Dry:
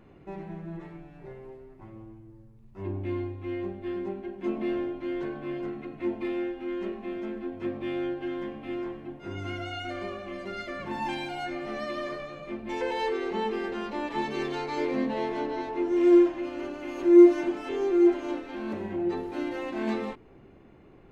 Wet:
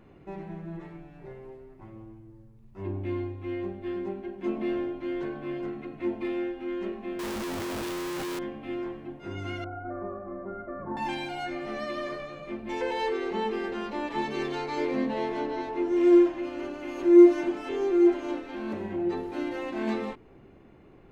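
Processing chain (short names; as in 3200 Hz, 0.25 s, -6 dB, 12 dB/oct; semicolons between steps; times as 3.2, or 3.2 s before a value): 7.19–8.39 infinite clipping; 9.64–10.97 steep low-pass 1400 Hz 36 dB/oct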